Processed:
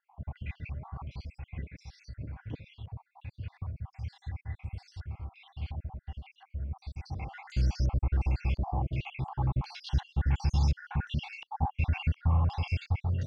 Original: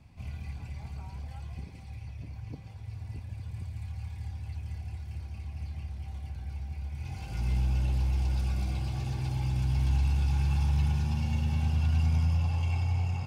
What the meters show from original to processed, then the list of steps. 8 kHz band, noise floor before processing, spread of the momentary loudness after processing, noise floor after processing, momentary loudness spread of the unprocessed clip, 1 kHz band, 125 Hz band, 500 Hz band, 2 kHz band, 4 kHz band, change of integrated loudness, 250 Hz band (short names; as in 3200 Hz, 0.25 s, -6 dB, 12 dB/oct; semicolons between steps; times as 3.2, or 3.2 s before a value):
n/a, -44 dBFS, 16 LU, -74 dBFS, 15 LU, +4.5 dB, -2.5 dB, +2.0 dB, +2.5 dB, +0.5 dB, -2.5 dB, -2.0 dB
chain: random spectral dropouts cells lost 64%; dynamic EQ 510 Hz, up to +4 dB, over -51 dBFS, Q 0.75; stepped low-pass 2.8 Hz 890–5500 Hz; gain +1.5 dB